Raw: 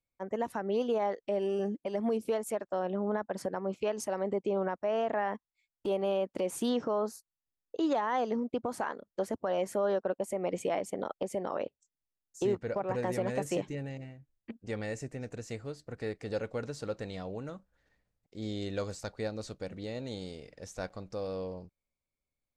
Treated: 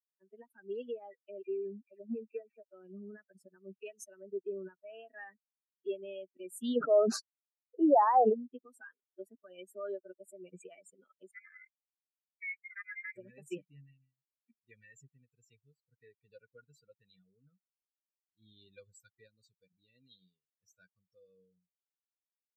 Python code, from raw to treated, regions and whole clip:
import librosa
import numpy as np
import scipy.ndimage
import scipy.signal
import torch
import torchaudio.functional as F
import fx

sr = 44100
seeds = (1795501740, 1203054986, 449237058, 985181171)

y = fx.chain(x, sr, fx.lowpass(hz=5500.0, slope=12),
    fx.resample_bad(factor=8, down='none', up='filtered'),
    fx.dispersion(late='lows', ms=59.0, hz=1900.0), at=(1.42, 2.63))
y = fx.chain(y, sr, fx.lowpass(hz=1900.0, slope=12),
    fx.peak_eq(hz=700.0, db=11.5, octaves=1.3),
    fx.sustainer(db_per_s=30.0), at=(6.76, 8.34))
y = fx.chain(y, sr, fx.lower_of_two(delay_ms=2.2),
    fx.highpass(hz=850.0, slope=6),
    fx.freq_invert(carrier_hz=2600), at=(11.31, 13.16))
y = fx.bin_expand(y, sr, power=3.0)
y = scipy.signal.sosfilt(scipy.signal.butter(4, 230.0, 'highpass', fs=sr, output='sos'), y)
y = fx.low_shelf(y, sr, hz=340.0, db=8.0)
y = y * librosa.db_to_amplitude(-1.5)